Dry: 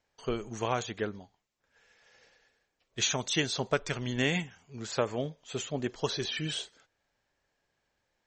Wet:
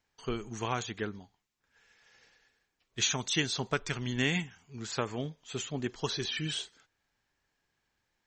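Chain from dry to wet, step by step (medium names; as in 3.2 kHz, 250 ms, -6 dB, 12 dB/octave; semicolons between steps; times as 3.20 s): peaking EQ 570 Hz -8.5 dB 0.67 oct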